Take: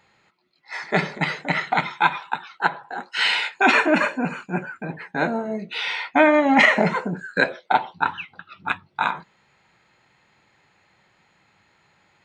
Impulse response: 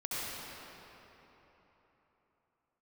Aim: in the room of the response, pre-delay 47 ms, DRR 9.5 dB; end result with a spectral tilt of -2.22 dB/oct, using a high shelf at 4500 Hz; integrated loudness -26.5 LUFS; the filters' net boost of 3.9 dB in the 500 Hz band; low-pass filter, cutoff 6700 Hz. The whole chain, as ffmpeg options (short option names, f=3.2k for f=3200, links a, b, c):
-filter_complex "[0:a]lowpass=6.7k,equalizer=f=500:t=o:g=5,highshelf=f=4.5k:g=4,asplit=2[a][b];[1:a]atrim=start_sample=2205,adelay=47[c];[b][c]afir=irnorm=-1:irlink=0,volume=-15dB[d];[a][d]amix=inputs=2:normalize=0,volume=-7dB"